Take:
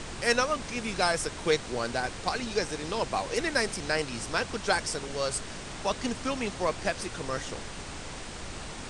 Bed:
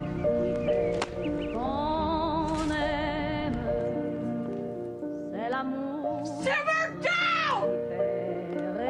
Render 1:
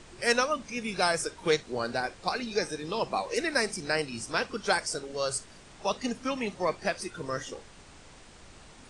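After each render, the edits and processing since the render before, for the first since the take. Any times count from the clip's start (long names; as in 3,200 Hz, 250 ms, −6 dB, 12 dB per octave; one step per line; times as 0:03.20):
noise reduction from a noise print 12 dB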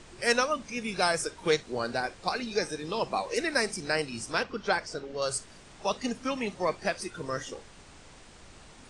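0:04.43–0:05.22: high-frequency loss of the air 130 metres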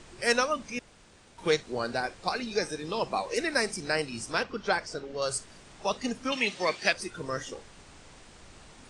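0:00.79–0:01.38: fill with room tone
0:06.32–0:06.93: meter weighting curve D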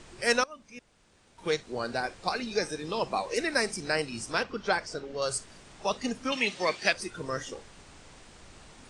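0:00.44–0:02.11: fade in, from −19.5 dB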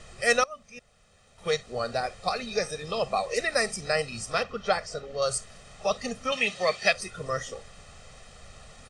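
notch filter 5,300 Hz, Q 30
comb filter 1.6 ms, depth 80%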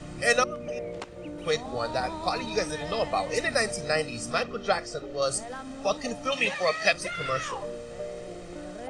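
mix in bed −8.5 dB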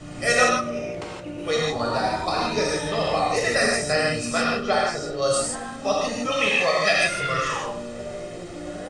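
repeating echo 102 ms, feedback 45%, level −19.5 dB
reverb whose tail is shaped and stops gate 190 ms flat, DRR −4.5 dB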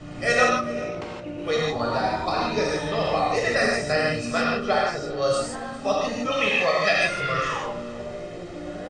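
high-frequency loss of the air 90 metres
single-tap delay 399 ms −19.5 dB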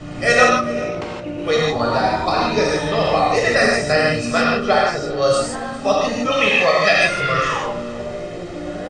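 level +6.5 dB
brickwall limiter −1 dBFS, peak gain reduction 0.5 dB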